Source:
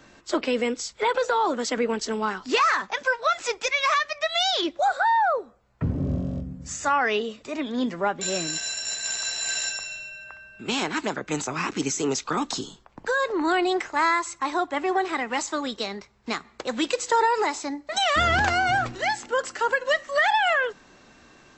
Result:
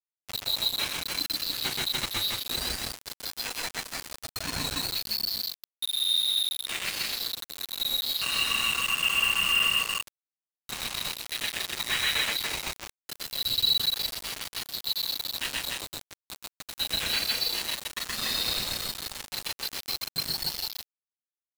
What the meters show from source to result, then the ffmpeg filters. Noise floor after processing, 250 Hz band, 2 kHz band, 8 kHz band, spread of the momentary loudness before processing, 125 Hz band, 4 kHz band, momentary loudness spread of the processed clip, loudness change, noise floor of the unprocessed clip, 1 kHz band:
under -85 dBFS, -16.5 dB, -6.0 dB, -2.5 dB, 11 LU, -10.5 dB, +5.0 dB, 13 LU, -2.5 dB, -54 dBFS, -16.5 dB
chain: -filter_complex "[0:a]afftfilt=real='real(if(lt(b,736),b+184*(1-2*mod(floor(b/184),2)),b),0)':imag='imag(if(lt(b,736),b+184*(1-2*mod(floor(b/184),2)),b),0)':win_size=2048:overlap=0.75,equalizer=f=100:t=o:w=0.72:g=11,asplit=2[a][b];[b]adelay=33,volume=-5dB[c];[a][c]amix=inputs=2:normalize=0,flanger=delay=7.8:depth=1.9:regen=-1:speed=1.4:shape=triangular,aecho=1:1:125.4|288.6:1|0.794,acrossover=split=250|560|2400[d][e][f][g];[f]acompressor=threshold=-48dB:ratio=6[h];[d][e][h][g]amix=inputs=4:normalize=0,highpass=f=430:t=q:w=0.5412,highpass=f=430:t=q:w=1.307,lowpass=f=3.5k:t=q:w=0.5176,lowpass=f=3.5k:t=q:w=0.7071,lowpass=f=3.5k:t=q:w=1.932,afreqshift=-390,aeval=exprs='val(0)*gte(abs(val(0)),0.0188)':c=same,volume=8dB"

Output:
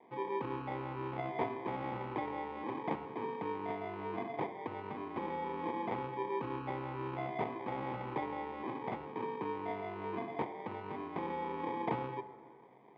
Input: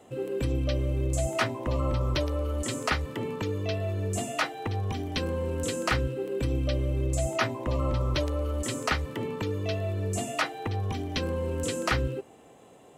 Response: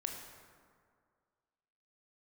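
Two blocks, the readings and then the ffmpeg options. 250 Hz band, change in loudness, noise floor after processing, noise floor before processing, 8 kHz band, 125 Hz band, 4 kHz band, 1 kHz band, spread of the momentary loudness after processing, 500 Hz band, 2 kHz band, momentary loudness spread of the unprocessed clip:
-8.0 dB, -9.5 dB, -55 dBFS, -53 dBFS, under -40 dB, -18.0 dB, -20.5 dB, -2.0 dB, 4 LU, -8.5 dB, -12.0 dB, 4 LU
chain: -filter_complex "[0:a]acrusher=samples=32:mix=1:aa=0.000001,highpass=f=170:w=0.5412,highpass=f=170:w=1.3066,equalizer=f=180:t=q:w=4:g=-5,equalizer=f=260:t=q:w=4:g=-5,equalizer=f=590:t=q:w=4:g=-9,equalizer=f=930:t=q:w=4:g=5,equalizer=f=1.7k:t=q:w=4:g=-10,lowpass=f=2.3k:w=0.5412,lowpass=f=2.3k:w=1.3066,asplit=2[a][b];[1:a]atrim=start_sample=2205[c];[b][c]afir=irnorm=-1:irlink=0,volume=-5.5dB[d];[a][d]amix=inputs=2:normalize=0,volume=-7.5dB"

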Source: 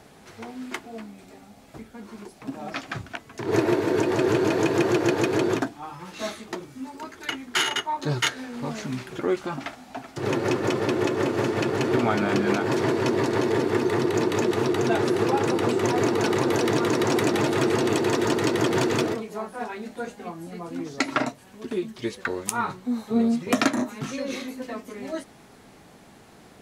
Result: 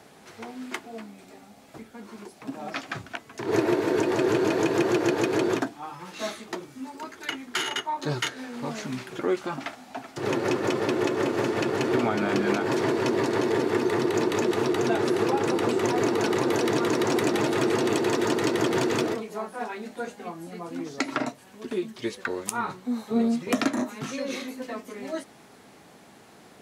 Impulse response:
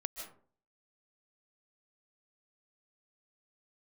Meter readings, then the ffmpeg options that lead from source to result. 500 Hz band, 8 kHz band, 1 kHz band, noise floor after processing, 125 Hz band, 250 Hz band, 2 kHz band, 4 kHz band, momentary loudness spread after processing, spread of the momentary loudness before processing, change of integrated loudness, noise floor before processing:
-1.0 dB, -2.0 dB, -1.5 dB, -52 dBFS, -4.5 dB, -1.5 dB, -2.0 dB, -2.5 dB, 14 LU, 15 LU, -1.5 dB, -51 dBFS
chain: -filter_complex "[0:a]acrossover=split=480[a][b];[b]acompressor=threshold=-25dB:ratio=6[c];[a][c]amix=inputs=2:normalize=0,highpass=f=180:p=1"

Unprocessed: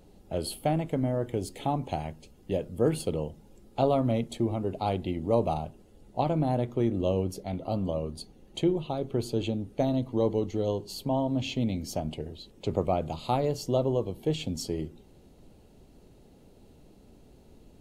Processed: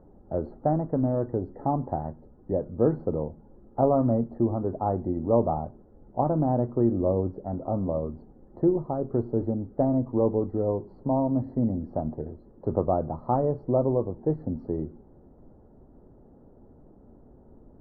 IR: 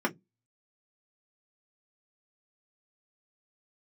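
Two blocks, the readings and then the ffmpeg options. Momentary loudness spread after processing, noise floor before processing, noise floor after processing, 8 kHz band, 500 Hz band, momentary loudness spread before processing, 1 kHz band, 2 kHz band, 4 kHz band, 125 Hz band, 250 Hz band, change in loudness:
9 LU, -56 dBFS, -54 dBFS, under -35 dB, +2.5 dB, 9 LU, +2.5 dB, under -10 dB, under -40 dB, +2.0 dB, +3.5 dB, +2.5 dB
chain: -filter_complex "[0:a]lowpass=f=1.3k:w=0.5412,lowpass=f=1.3k:w=1.3066,asplit=2[a][b];[1:a]atrim=start_sample=2205,lowshelf=f=170:g=9.5[c];[b][c]afir=irnorm=-1:irlink=0,volume=-30.5dB[d];[a][d]amix=inputs=2:normalize=0,afftfilt=real='re*eq(mod(floor(b*sr/1024/2000),2),0)':imag='im*eq(mod(floor(b*sr/1024/2000),2),0)':win_size=1024:overlap=0.75,volume=2dB"

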